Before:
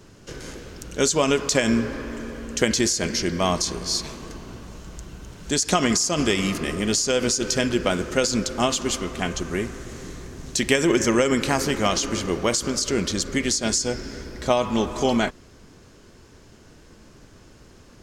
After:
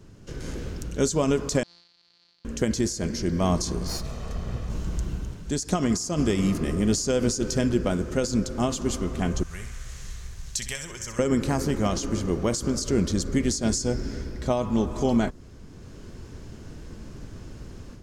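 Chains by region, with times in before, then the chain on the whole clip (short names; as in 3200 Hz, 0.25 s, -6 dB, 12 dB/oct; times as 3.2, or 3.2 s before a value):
1.63–2.45 sample sorter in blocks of 256 samples + band-pass 4400 Hz, Q 11 + air absorption 92 m
3.87–4.7 minimum comb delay 1.6 ms + high shelf 7100 Hz -7 dB
9.43–11.19 passive tone stack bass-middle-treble 10-0-10 + flutter echo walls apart 11 m, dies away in 0.44 s
whole clip: low shelf 290 Hz +11 dB; AGC gain up to 9 dB; dynamic EQ 2700 Hz, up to -6 dB, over -36 dBFS, Q 0.87; gain -8 dB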